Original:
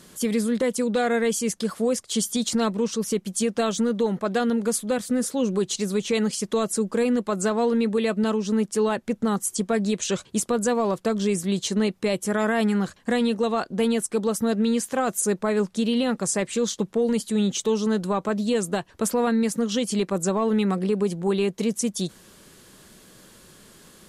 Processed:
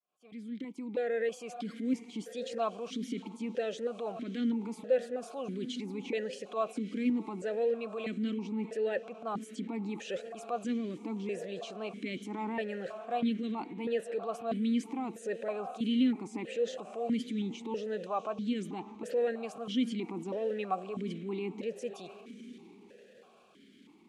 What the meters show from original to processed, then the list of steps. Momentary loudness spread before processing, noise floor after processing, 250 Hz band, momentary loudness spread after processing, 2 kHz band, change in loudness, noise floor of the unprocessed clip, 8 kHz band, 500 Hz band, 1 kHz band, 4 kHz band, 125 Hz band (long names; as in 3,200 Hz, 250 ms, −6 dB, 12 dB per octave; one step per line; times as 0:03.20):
3 LU, −58 dBFS, −11.0 dB, 8 LU, −12.0 dB, −11.0 dB, −54 dBFS, −25.5 dB, −10.5 dB, −9.5 dB, −13.0 dB, −14.0 dB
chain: fade in at the beginning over 1.45 s
tape wow and flutter 16 cents
on a send: feedback delay with all-pass diffusion 631 ms, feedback 44%, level −16 dB
on the sum: transient designer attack −5 dB, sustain +5 dB
formant filter that steps through the vowels 3.1 Hz
level +2.5 dB